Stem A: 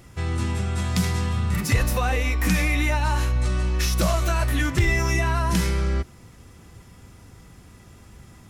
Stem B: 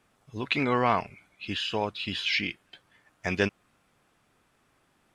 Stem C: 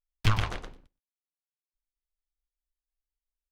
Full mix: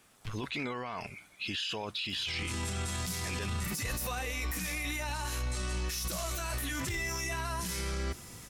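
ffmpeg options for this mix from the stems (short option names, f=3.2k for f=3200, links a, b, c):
-filter_complex "[0:a]lowshelf=f=180:g=-5,adelay=2100,volume=-0.5dB[a];[1:a]alimiter=limit=-18.5dB:level=0:latency=1,volume=1.5dB,asplit=2[b][c];[2:a]volume=-18dB[d];[c]apad=whole_len=155148[e];[d][e]sidechaincompress=threshold=-34dB:ratio=8:attack=16:release=390[f];[a][b]amix=inputs=2:normalize=0,highshelf=f=3.6k:g=12,alimiter=limit=-23dB:level=0:latency=1:release=25,volume=0dB[g];[f][g]amix=inputs=2:normalize=0,alimiter=level_in=3dB:limit=-24dB:level=0:latency=1:release=10,volume=-3dB"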